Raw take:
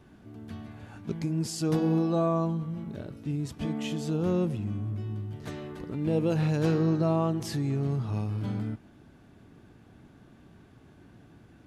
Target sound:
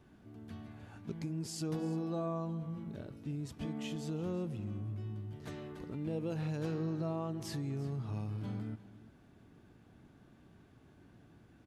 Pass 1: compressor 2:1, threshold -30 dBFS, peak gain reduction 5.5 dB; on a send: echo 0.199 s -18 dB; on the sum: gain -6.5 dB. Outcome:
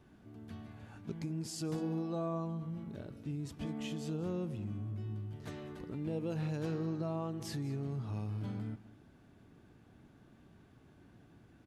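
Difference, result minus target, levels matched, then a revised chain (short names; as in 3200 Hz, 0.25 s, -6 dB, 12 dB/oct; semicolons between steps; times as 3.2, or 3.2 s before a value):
echo 0.147 s early
compressor 2:1, threshold -30 dBFS, peak gain reduction 5.5 dB; on a send: echo 0.346 s -18 dB; on the sum: gain -6.5 dB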